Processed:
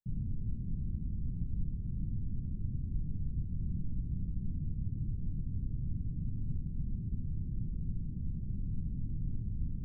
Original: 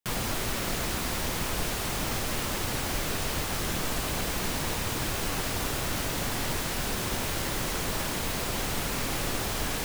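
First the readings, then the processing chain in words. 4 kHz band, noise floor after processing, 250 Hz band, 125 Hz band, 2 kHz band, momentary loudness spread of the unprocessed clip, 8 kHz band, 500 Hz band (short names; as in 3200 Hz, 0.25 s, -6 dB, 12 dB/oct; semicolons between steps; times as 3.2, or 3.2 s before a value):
under -40 dB, -40 dBFS, -7.0 dB, -0.5 dB, under -40 dB, 0 LU, under -40 dB, under -30 dB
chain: inverse Chebyshev low-pass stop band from 1100 Hz, stop band 80 dB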